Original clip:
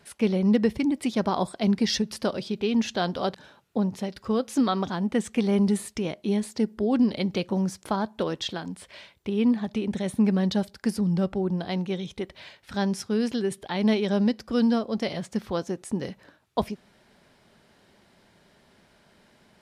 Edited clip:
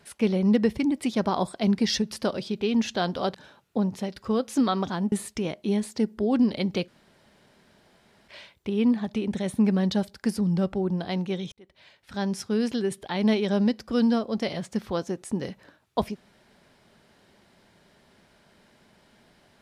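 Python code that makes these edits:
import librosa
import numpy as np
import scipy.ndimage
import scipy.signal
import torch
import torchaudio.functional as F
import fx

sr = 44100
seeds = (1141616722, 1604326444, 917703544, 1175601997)

y = fx.edit(x, sr, fx.cut(start_s=5.12, length_s=0.6),
    fx.room_tone_fill(start_s=7.48, length_s=1.4),
    fx.fade_in_span(start_s=12.12, length_s=0.94), tone=tone)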